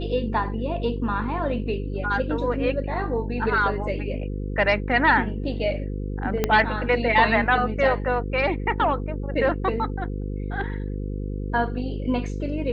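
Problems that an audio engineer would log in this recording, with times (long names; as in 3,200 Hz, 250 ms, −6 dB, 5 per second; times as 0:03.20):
mains buzz 50 Hz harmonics 10 −29 dBFS
0:06.44: click −7 dBFS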